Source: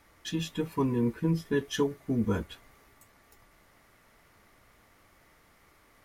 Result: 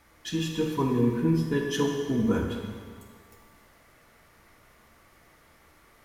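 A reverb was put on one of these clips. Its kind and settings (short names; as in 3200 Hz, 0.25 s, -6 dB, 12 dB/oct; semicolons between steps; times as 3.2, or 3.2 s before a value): plate-style reverb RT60 1.8 s, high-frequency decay 0.95×, DRR 1 dB; gain +1 dB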